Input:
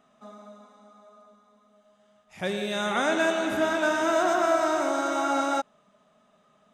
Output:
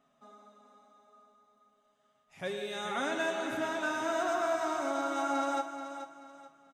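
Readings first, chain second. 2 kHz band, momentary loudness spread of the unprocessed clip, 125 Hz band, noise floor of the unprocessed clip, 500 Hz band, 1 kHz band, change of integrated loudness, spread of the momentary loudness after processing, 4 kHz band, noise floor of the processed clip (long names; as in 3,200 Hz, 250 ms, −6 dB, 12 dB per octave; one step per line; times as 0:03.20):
−7.5 dB, 7 LU, −10.5 dB, −64 dBFS, −8.0 dB, −6.5 dB, −8.0 dB, 12 LU, −7.5 dB, −72 dBFS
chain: comb filter 7.3 ms, depth 53%
repeating echo 432 ms, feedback 31%, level −10 dB
level −9 dB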